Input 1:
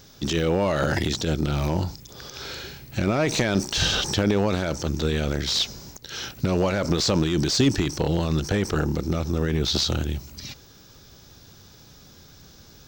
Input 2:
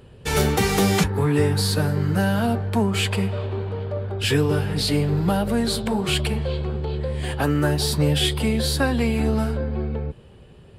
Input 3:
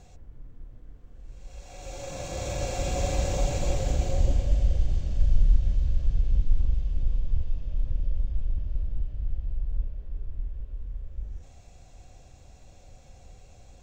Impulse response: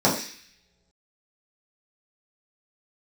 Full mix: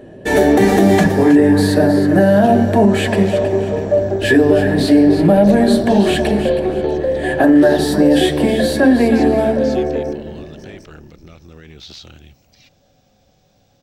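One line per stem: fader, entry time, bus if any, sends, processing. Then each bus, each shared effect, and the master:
-16.5 dB, 2.15 s, no send, no echo send, bell 2500 Hz +9 dB 1.2 oct
-2.0 dB, 0.00 s, send -22 dB, echo send -9.5 dB, small resonant body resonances 330/620/1700 Hz, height 17 dB, ringing for 25 ms
-17.5 dB, 0.00 s, send -7 dB, no echo send, dry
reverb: on, pre-delay 3 ms
echo: feedback echo 0.319 s, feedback 31%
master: limiter -2.5 dBFS, peak gain reduction 6.5 dB

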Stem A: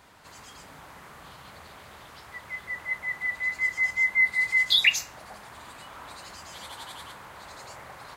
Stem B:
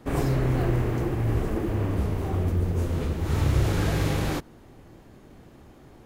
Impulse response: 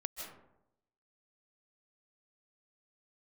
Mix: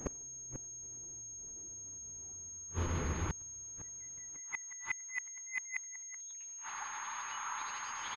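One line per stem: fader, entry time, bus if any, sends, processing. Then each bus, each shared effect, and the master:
+1.0 dB, 1.50 s, send -22.5 dB, Chebyshev high-pass 850 Hz, order 6
2.26 s -3 dB -> 2.7 s -12.5 dB, 0.00 s, no send, dry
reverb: on, RT60 0.85 s, pre-delay 0.115 s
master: negative-ratio compressor -30 dBFS, ratio -1; flipped gate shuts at -24 dBFS, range -34 dB; pulse-width modulation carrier 6500 Hz

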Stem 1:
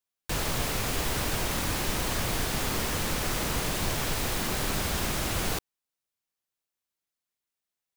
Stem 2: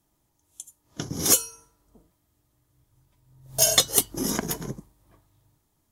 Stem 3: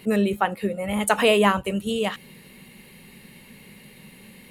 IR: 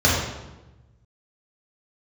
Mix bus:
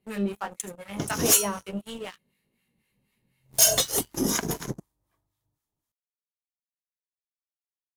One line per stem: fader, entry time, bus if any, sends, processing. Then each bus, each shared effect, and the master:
off
-5.0 dB, 0.00 s, no send, low shelf 420 Hz -3 dB
-15.5 dB, 0.00 s, no send, chorus 1.5 Hz, delay 16.5 ms, depth 4.2 ms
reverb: off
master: sample leveller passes 3; harmonic tremolo 4 Hz, depth 70%, crossover 910 Hz

